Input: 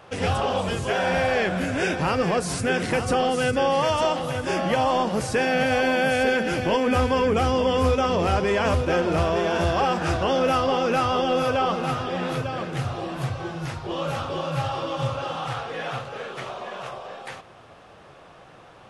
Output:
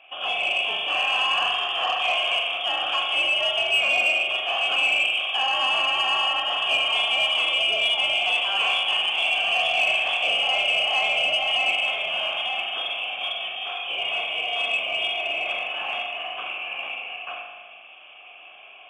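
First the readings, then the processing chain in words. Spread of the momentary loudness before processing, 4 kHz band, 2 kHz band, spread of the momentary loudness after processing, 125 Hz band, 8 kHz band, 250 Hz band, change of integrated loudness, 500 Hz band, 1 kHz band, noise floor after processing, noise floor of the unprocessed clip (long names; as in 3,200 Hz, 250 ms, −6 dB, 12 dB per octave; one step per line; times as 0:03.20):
10 LU, +13.0 dB, +6.0 dB, 9 LU, below −30 dB, −6.5 dB, below −20 dB, +2.0 dB, −10.0 dB, −3.5 dB, −46 dBFS, −48 dBFS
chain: automatic gain control gain up to 4 dB
voice inversion scrambler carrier 3,400 Hz
in parallel at −1 dB: brickwall limiter −13 dBFS, peak gain reduction 8 dB
on the sum: formant filter a
spring reverb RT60 1.2 s, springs 39 ms, chirp 40 ms, DRR 0.5 dB
harmonic generator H 5 −25 dB, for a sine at −12 dBFS
level +1.5 dB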